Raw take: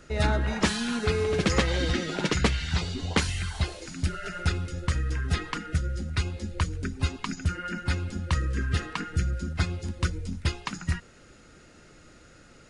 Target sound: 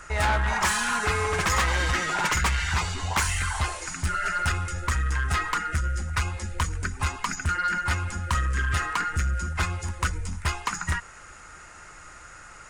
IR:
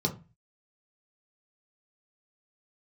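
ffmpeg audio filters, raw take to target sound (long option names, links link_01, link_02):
-af "equalizer=frequency=125:width_type=o:width=1:gain=-5,equalizer=frequency=250:width_type=o:width=1:gain=-12,equalizer=frequency=500:width_type=o:width=1:gain=-7,equalizer=frequency=1000:width_type=o:width=1:gain=11,equalizer=frequency=2000:width_type=o:width=1:gain=4,equalizer=frequency=4000:width_type=o:width=1:gain=-8,equalizer=frequency=8000:width_type=o:width=1:gain=8,acontrast=57,asoftclip=type=tanh:threshold=-19dB"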